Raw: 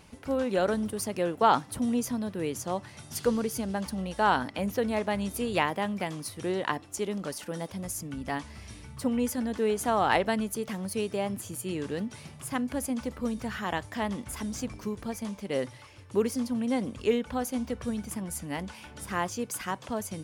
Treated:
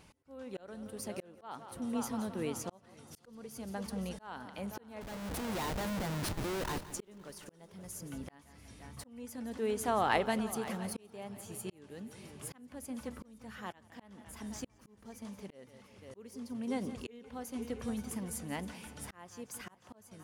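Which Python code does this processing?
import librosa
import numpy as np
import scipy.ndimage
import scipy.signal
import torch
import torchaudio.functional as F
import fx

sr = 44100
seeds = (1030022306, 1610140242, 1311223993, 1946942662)

y = fx.schmitt(x, sr, flips_db=-38.0, at=(5.01, 6.91))
y = fx.echo_heads(y, sr, ms=173, heads='first and third', feedback_pct=55, wet_db=-16)
y = fx.auto_swell(y, sr, attack_ms=789.0)
y = F.gain(torch.from_numpy(y), -5.0).numpy()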